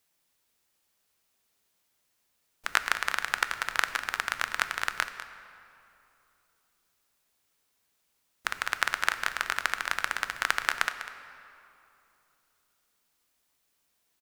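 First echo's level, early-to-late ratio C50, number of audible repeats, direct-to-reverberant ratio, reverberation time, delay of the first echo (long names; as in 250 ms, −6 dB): −13.0 dB, 9.0 dB, 1, 8.0 dB, 2.9 s, 198 ms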